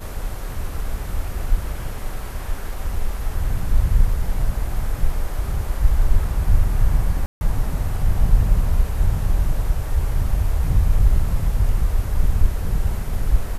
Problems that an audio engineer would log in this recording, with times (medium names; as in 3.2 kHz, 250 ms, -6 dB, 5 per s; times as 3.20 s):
7.26–7.41 s: dropout 150 ms